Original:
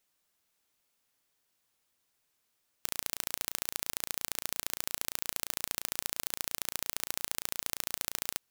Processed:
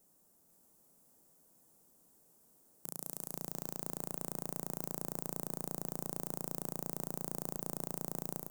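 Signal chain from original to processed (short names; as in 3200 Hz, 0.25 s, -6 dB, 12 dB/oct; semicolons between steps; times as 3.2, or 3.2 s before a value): EQ curve 110 Hz 0 dB, 170 Hz +10 dB, 770 Hz +1 dB, 2300 Hz -18 dB, 3700 Hz -17 dB, 8000 Hz 0 dB; level quantiser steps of 14 dB; limiter -30 dBFS, peak gain reduction 17 dB; feedback echo 0.488 s, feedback 55%, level -4 dB; reverb RT60 0.85 s, pre-delay 0.12 s, DRR 16 dB; gain +15 dB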